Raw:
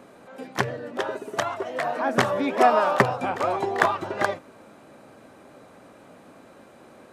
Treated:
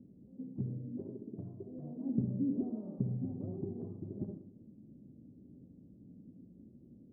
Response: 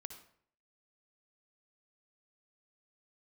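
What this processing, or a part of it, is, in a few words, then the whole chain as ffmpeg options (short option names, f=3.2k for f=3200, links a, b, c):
club heard from the street: -filter_complex "[0:a]alimiter=limit=-11.5dB:level=0:latency=1:release=339,lowpass=f=250:w=0.5412,lowpass=f=250:w=1.3066[a];[1:a]atrim=start_sample=2205[b];[a][b]afir=irnorm=-1:irlink=0,volume=5.5dB"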